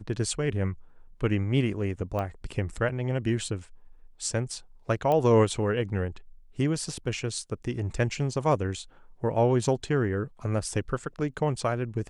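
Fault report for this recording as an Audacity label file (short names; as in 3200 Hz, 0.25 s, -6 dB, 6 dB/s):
2.190000	2.190000	pop -20 dBFS
5.120000	5.120000	pop -16 dBFS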